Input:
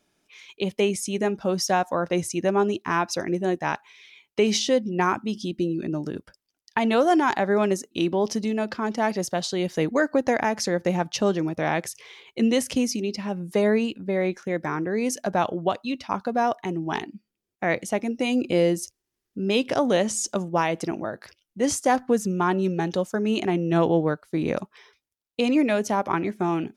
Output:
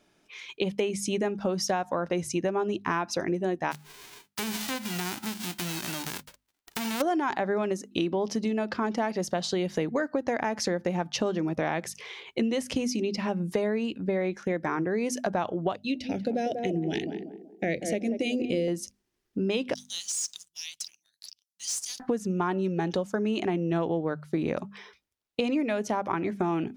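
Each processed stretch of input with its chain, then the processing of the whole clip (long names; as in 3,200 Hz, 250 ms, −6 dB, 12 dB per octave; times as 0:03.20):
0:03.71–0:07.00: spectral envelope flattened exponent 0.1 + notch filter 550 Hz, Q 16 + downward compressor 4 to 1, threshold −33 dBFS
0:15.76–0:18.68: Butterworth band-reject 1,100 Hz, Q 0.67 + mains-hum notches 60/120/180/240/300/360 Hz + feedback echo with a band-pass in the loop 189 ms, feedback 42%, band-pass 450 Hz, level −6.5 dB
0:19.74–0:22.00: inverse Chebyshev high-pass filter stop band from 1,300 Hz, stop band 60 dB + downward compressor 2.5 to 1, threshold −36 dBFS + leveller curve on the samples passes 2
whole clip: high-shelf EQ 6,300 Hz −8 dB; mains-hum notches 50/100/150/200/250 Hz; downward compressor 6 to 1, threshold −30 dBFS; level +5 dB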